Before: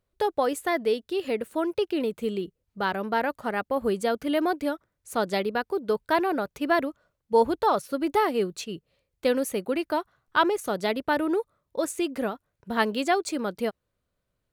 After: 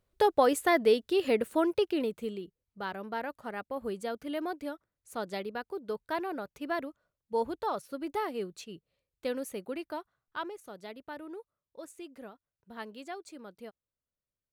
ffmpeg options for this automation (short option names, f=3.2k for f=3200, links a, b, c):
-af "volume=1dB,afade=t=out:st=1.47:d=0.93:silence=0.281838,afade=t=out:st=9.71:d=0.89:silence=0.398107"